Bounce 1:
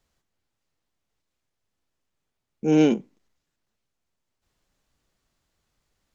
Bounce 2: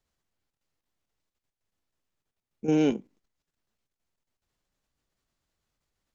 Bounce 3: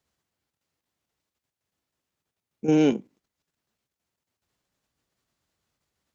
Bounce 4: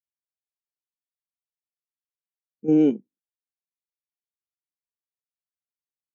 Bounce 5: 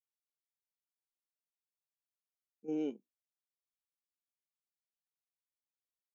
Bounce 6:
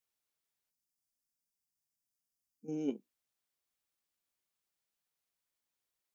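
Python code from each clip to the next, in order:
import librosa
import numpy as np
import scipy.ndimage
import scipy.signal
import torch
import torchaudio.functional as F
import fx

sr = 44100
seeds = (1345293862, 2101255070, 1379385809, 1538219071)

y1 = fx.level_steps(x, sr, step_db=10)
y1 = y1 * librosa.db_to_amplitude(-1.5)
y2 = scipy.signal.sosfilt(scipy.signal.butter(2, 71.0, 'highpass', fs=sr, output='sos'), y1)
y2 = y2 * librosa.db_to_amplitude(3.5)
y3 = fx.spectral_expand(y2, sr, expansion=1.5)
y4 = fx.highpass(y3, sr, hz=930.0, slope=6)
y4 = fx.peak_eq(y4, sr, hz=1700.0, db=-9.0, octaves=0.62)
y4 = y4 * librosa.db_to_amplitude(-8.5)
y5 = fx.spec_box(y4, sr, start_s=0.7, length_s=2.18, low_hz=280.0, high_hz=4600.0, gain_db=-11)
y5 = y5 * librosa.db_to_amplitude(7.0)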